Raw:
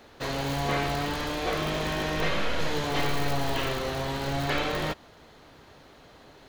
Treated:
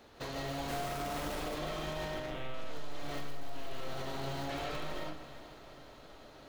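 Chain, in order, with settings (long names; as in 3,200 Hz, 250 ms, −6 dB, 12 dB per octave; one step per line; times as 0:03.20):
0:00.68–0:01.40: comparator with hysteresis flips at −35 dBFS
0:03.68–0:04.37: high-pass filter 56 Hz
gain into a clipping stage and back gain 23.5 dB
0:02.14–0:02.54: one-pitch LPC vocoder at 8 kHz 130 Hz
downward compressor, threshold −32 dBFS, peak gain reduction 11 dB
feedback delay with all-pass diffusion 474 ms, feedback 48%, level −15.5 dB
convolution reverb RT60 0.50 s, pre-delay 115 ms, DRR −1 dB
brickwall limiter −23 dBFS, peak gain reduction 9 dB
parametric band 1,900 Hz −2.5 dB
level −5.5 dB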